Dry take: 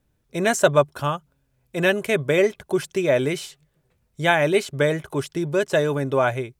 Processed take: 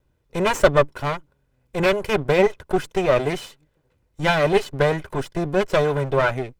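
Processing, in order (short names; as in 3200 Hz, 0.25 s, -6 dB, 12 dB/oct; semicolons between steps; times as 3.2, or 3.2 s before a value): minimum comb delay 2 ms; high shelf 4500 Hz -9 dB; gain +3 dB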